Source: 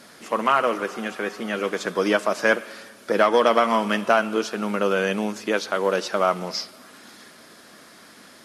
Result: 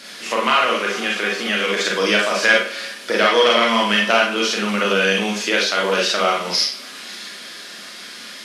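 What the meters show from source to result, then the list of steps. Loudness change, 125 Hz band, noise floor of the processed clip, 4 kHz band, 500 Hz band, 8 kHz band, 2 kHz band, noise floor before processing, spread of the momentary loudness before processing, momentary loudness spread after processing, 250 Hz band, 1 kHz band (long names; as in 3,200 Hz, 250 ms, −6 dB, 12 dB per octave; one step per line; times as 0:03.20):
+5.5 dB, can't be measured, −36 dBFS, +13.5 dB, +2.0 dB, +10.5 dB, +8.5 dB, −48 dBFS, 11 LU, 17 LU, +2.5 dB, +3.0 dB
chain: stylus tracing distortion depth 0.021 ms
meter weighting curve D
downsampling to 32,000 Hz
four-comb reverb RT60 0.33 s, combs from 31 ms, DRR −2.5 dB
in parallel at +2 dB: downward compressor, threshold −21 dBFS, peak gain reduction 14 dB
on the sum: level −5.5 dB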